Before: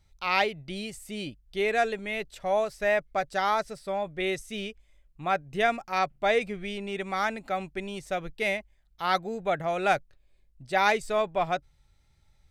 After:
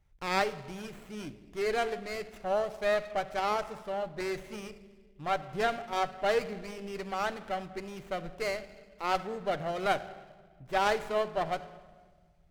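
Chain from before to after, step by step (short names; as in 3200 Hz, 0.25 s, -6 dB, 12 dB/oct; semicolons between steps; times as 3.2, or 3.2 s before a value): shoebox room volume 1600 m³, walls mixed, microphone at 0.49 m; running maximum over 9 samples; gain -4 dB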